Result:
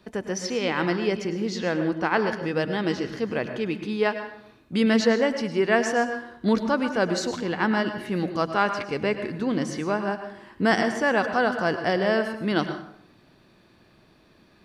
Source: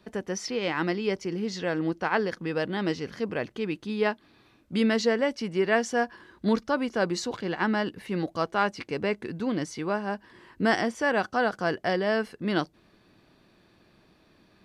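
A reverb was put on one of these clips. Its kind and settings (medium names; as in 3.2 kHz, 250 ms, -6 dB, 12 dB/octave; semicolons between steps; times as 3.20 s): plate-style reverb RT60 0.68 s, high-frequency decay 0.65×, pre-delay 90 ms, DRR 8 dB; trim +2.5 dB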